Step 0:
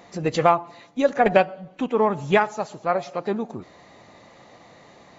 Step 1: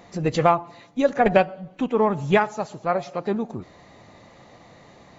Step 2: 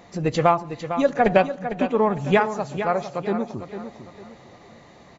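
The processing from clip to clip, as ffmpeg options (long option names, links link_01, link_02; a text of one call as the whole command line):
ffmpeg -i in.wav -af "lowshelf=frequency=150:gain=9,volume=-1dB" out.wav
ffmpeg -i in.wav -af "aecho=1:1:453|906|1359|1812:0.316|0.108|0.0366|0.0124" out.wav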